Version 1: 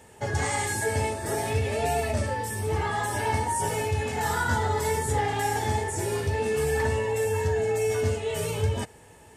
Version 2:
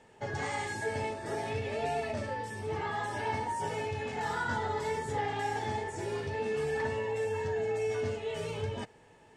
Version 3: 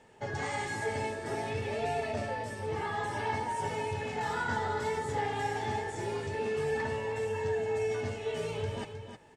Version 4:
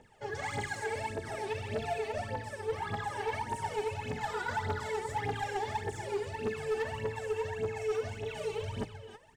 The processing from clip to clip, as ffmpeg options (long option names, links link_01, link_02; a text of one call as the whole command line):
ffmpeg -i in.wav -af "lowpass=4900,equalizer=frequency=75:width_type=o:width=0.58:gain=-14,volume=-6dB" out.wav
ffmpeg -i in.wav -af "aecho=1:1:313:0.376" out.wav
ffmpeg -i in.wav -filter_complex "[0:a]aphaser=in_gain=1:out_gain=1:delay=2.7:decay=0.77:speed=1.7:type=triangular,acrossover=split=4000[link_01][link_02];[link_01]asoftclip=type=hard:threshold=-21.5dB[link_03];[link_03][link_02]amix=inputs=2:normalize=0,volume=-5.5dB" out.wav